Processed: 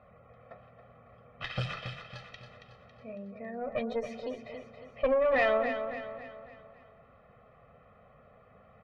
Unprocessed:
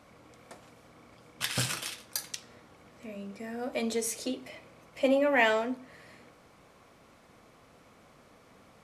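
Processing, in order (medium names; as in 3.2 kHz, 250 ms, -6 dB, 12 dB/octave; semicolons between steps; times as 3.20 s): spectral gate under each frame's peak -25 dB strong; level-controlled noise filter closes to 2.5 kHz, open at -22 dBFS; comb 1.6 ms, depth 96%; valve stage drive 19 dB, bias 0.55; distance through air 320 m; on a send: feedback delay 276 ms, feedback 46%, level -8.5 dB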